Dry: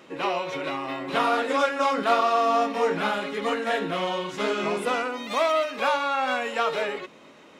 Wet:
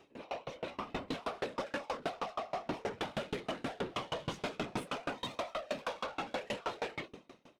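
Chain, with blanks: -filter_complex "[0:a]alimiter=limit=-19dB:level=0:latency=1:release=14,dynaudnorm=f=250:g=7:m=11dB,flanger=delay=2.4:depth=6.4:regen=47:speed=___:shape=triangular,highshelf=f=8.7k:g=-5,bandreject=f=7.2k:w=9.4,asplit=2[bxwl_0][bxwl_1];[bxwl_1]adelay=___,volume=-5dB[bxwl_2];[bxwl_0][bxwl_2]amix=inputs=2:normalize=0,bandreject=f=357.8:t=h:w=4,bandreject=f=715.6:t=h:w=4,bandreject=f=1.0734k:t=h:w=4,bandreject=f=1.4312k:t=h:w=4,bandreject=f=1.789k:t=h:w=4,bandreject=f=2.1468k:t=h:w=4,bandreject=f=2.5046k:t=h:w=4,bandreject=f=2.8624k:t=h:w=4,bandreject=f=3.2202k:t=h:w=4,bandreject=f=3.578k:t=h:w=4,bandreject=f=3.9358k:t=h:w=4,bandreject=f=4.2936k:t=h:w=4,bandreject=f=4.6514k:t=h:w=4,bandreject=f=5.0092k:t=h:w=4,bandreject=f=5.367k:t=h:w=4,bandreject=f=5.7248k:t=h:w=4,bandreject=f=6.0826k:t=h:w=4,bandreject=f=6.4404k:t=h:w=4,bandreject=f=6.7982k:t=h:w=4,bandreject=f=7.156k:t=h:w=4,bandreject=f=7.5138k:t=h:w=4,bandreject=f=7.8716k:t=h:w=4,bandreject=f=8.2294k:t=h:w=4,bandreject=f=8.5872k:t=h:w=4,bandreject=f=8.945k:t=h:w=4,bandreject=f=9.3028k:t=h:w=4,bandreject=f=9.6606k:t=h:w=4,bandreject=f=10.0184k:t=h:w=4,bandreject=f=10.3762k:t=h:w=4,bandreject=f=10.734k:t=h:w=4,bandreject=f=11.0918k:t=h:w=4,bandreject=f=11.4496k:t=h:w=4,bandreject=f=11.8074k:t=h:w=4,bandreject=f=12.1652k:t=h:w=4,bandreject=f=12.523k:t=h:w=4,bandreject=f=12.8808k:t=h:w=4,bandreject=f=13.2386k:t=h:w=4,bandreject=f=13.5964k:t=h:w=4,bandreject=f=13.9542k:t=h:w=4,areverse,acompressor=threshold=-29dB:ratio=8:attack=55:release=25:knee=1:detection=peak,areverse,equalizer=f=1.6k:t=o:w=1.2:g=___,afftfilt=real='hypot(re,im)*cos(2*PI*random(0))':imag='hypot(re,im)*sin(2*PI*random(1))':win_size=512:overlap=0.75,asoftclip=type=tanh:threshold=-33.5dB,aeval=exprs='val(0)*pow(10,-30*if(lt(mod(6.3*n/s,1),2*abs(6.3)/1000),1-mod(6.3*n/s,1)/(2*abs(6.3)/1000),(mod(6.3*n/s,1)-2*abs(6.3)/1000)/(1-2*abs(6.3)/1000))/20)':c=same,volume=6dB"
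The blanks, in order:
0.39, 23, -6.5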